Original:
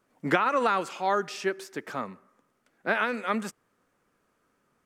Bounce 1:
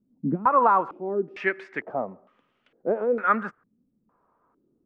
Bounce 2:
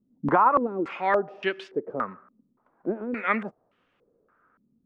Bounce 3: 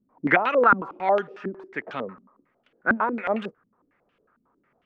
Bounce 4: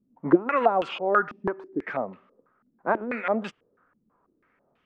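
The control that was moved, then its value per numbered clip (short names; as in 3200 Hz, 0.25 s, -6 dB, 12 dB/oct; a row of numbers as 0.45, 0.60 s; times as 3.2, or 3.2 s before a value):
stepped low-pass, rate: 2.2, 3.5, 11, 6.1 Hz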